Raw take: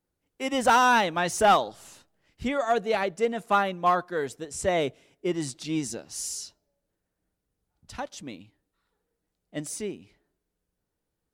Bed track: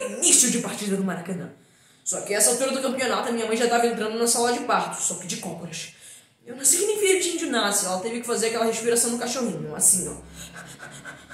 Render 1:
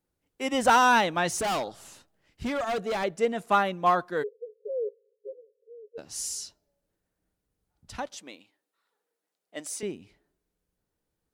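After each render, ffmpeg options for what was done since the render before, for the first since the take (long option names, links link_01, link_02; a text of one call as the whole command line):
ffmpeg -i in.wav -filter_complex "[0:a]asettb=1/sr,asplit=3[link_01][link_02][link_03];[link_01]atrim=end=1.394[link_04];[link_02]atrim=start=1.39:end=3.04,asetpts=PTS-STARTPTS,afade=type=in:duration=0.004:curve=qsin,afade=type=out:start_time=1.646:duration=0.004:curve=qsin,asoftclip=type=hard:threshold=-26dB[link_05];[link_03]atrim=start=3.036[link_06];[link_04][link_05]acrossfade=duration=0.004:curve1=hsin:curve2=qsin[link_07];[link_07][link_06]acrossfade=duration=0.004:curve1=qsin:curve2=hsin,asplit=3[link_08][link_09][link_10];[link_08]afade=type=out:start_time=4.22:duration=0.02[link_11];[link_09]asuperpass=centerf=470:order=12:qfactor=3.6,afade=type=in:start_time=4.22:duration=0.02,afade=type=out:start_time=5.97:duration=0.02[link_12];[link_10]afade=type=in:start_time=5.97:duration=0.02[link_13];[link_11][link_12][link_13]amix=inputs=3:normalize=0,asettb=1/sr,asplit=3[link_14][link_15][link_16];[link_14]atrim=end=8.174[link_17];[link_15]atrim=start=8.17:end=9.83,asetpts=PTS-STARTPTS,afade=type=in:duration=0.004:curve=qsin,afade=type=out:start_time=1.656:duration=0.004:curve=qsin,highpass=460[link_18];[link_16]atrim=start=9.826[link_19];[link_17][link_18]acrossfade=duration=0.004:curve1=hsin:curve2=qsin[link_20];[link_20][link_19]acrossfade=duration=0.004:curve1=qsin:curve2=hsin" out.wav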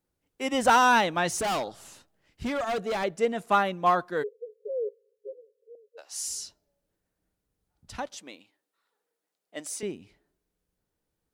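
ffmpeg -i in.wav -filter_complex "[0:a]asettb=1/sr,asplit=3[link_01][link_02][link_03];[link_01]atrim=end=5.754[link_04];[link_02]atrim=start=5.75:end=6.28,asetpts=PTS-STARTPTS,afade=type=in:duration=0.004:curve=qsin,afade=type=out:start_time=0.526:duration=0.004:curve=qsin,highpass=frequency=590:width=0.5412,highpass=frequency=590:width=1.3066[link_05];[link_03]atrim=start=6.276[link_06];[link_04][link_05]acrossfade=duration=0.004:curve1=hsin:curve2=qsin[link_07];[link_07][link_06]acrossfade=duration=0.004:curve1=qsin:curve2=hsin" out.wav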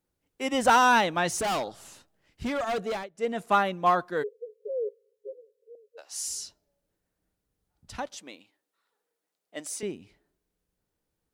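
ffmpeg -i in.wav -filter_complex "[0:a]asplit=3[link_01][link_02][link_03];[link_01]atrim=end=3.08,asetpts=PTS-STARTPTS,afade=type=out:start_time=2.83:duration=0.25:curve=qsin:silence=0.0841395[link_04];[link_02]atrim=start=3.08:end=3.14,asetpts=PTS-STARTPTS,volume=-21.5dB[link_05];[link_03]atrim=start=3.14,asetpts=PTS-STARTPTS,afade=type=in:duration=0.25:curve=qsin:silence=0.0841395[link_06];[link_04][link_05][link_06]concat=n=3:v=0:a=1" out.wav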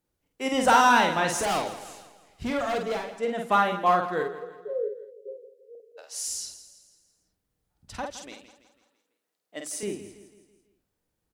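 ffmpeg -i in.wav -filter_complex "[0:a]asplit=2[link_01][link_02];[link_02]adelay=49,volume=-4.5dB[link_03];[link_01][link_03]amix=inputs=2:normalize=0,aecho=1:1:165|330|495|660|825:0.2|0.0958|0.046|0.0221|0.0106" out.wav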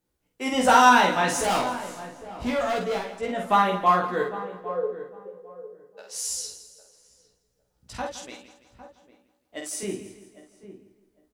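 ffmpeg -i in.wav -filter_complex "[0:a]asplit=2[link_01][link_02];[link_02]adelay=16,volume=-2.5dB[link_03];[link_01][link_03]amix=inputs=2:normalize=0,asplit=2[link_04][link_05];[link_05]adelay=805,lowpass=frequency=930:poles=1,volume=-13dB,asplit=2[link_06][link_07];[link_07]adelay=805,lowpass=frequency=930:poles=1,volume=0.22,asplit=2[link_08][link_09];[link_09]adelay=805,lowpass=frequency=930:poles=1,volume=0.22[link_10];[link_04][link_06][link_08][link_10]amix=inputs=4:normalize=0" out.wav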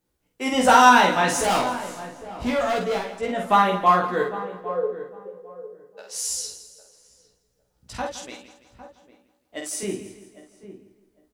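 ffmpeg -i in.wav -af "volume=2.5dB,alimiter=limit=-3dB:level=0:latency=1" out.wav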